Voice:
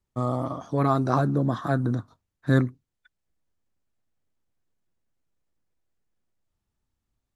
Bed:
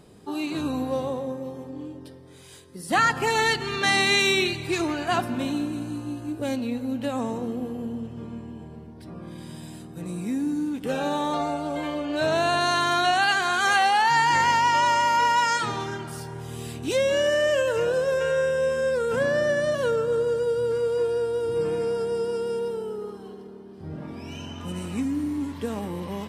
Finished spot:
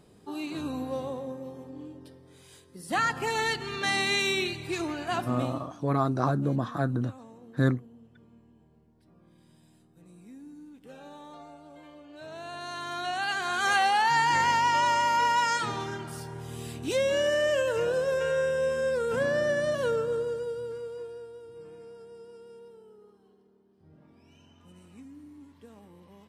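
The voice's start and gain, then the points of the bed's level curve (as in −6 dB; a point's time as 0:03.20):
5.10 s, −3.5 dB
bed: 0:05.40 −6 dB
0:05.68 −20.5 dB
0:12.23 −20.5 dB
0:13.72 −3.5 dB
0:19.97 −3.5 dB
0:21.53 −21 dB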